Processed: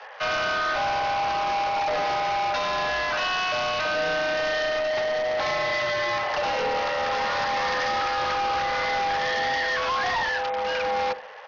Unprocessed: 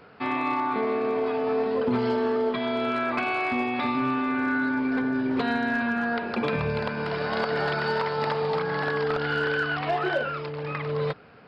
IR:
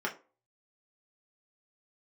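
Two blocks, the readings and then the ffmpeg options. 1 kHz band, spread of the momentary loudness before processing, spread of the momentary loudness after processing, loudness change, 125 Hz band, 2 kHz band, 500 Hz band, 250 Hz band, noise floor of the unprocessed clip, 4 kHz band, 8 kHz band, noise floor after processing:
+5.0 dB, 4 LU, 1 LU, +1.5 dB, -9.5 dB, +3.0 dB, 0.0 dB, -15.0 dB, -34 dBFS, +8.5 dB, no reading, -28 dBFS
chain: -filter_complex "[0:a]bandreject=f=60:t=h:w=6,bandreject=f=120:t=h:w=6,bandreject=f=180:t=h:w=6,bandreject=f=240:t=h:w=6,bandreject=f=300:t=h:w=6,bandreject=f=360:t=h:w=6,bandreject=f=420:t=h:w=6,acrossover=split=480[s0][s1];[s1]alimiter=limit=0.075:level=0:latency=1:release=11[s2];[s0][s2]amix=inputs=2:normalize=0,afreqshift=360,aresample=11025,asoftclip=type=tanh:threshold=0.0251,aresample=44100,asplit=2[s3][s4];[s4]adelay=65,lowpass=f=1900:p=1,volume=0.178,asplit=2[s5][s6];[s6]adelay=65,lowpass=f=1900:p=1,volume=0.45,asplit=2[s7][s8];[s8]adelay=65,lowpass=f=1900:p=1,volume=0.45,asplit=2[s9][s10];[s10]adelay=65,lowpass=f=1900:p=1,volume=0.45[s11];[s3][s5][s7][s9][s11]amix=inputs=5:normalize=0,volume=2.82" -ar 48000 -c:a sbc -b:a 64k

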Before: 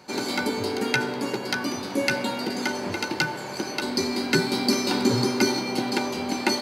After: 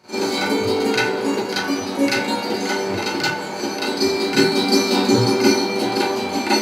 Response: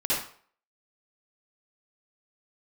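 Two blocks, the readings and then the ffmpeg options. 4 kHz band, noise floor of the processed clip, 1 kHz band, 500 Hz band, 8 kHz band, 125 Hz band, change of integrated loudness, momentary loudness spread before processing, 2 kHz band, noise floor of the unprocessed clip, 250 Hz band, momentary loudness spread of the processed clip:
+6.0 dB, -27 dBFS, +7.0 dB, +8.0 dB, +4.5 dB, +4.5 dB, +6.0 dB, 6 LU, +4.5 dB, -34 dBFS, +6.0 dB, 6 LU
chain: -filter_complex "[1:a]atrim=start_sample=2205,asetrate=66150,aresample=44100[s0];[0:a][s0]afir=irnorm=-1:irlink=0,volume=0.891"

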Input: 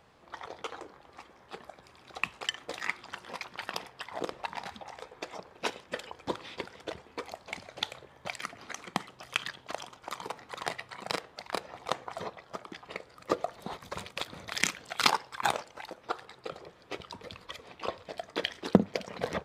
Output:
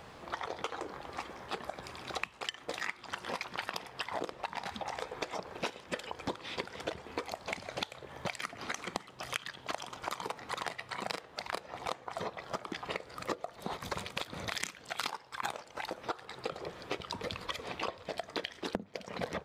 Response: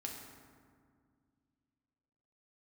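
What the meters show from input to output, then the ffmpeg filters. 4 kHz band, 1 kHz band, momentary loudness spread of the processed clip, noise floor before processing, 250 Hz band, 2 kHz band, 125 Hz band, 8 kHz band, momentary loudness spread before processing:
-3.5 dB, -2.5 dB, 4 LU, -59 dBFS, -7.5 dB, -2.5 dB, -5.5 dB, -4.5 dB, 15 LU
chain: -af "acompressor=threshold=0.00631:ratio=12,volume=3.35"

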